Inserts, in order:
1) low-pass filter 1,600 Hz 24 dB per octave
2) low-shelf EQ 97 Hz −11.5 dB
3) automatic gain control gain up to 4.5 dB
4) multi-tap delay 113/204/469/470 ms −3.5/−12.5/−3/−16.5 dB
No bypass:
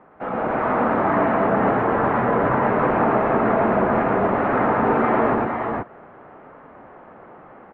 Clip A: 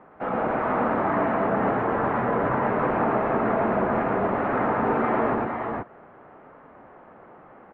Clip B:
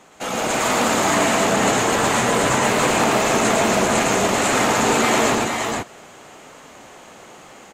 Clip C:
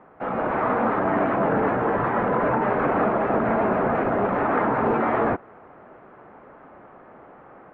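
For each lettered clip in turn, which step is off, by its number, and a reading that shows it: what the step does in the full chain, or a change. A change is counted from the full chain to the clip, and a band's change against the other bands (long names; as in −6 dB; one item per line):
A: 3, change in momentary loudness spread −1 LU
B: 1, 2 kHz band +5.5 dB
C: 4, echo-to-direct ratio 0.0 dB to none audible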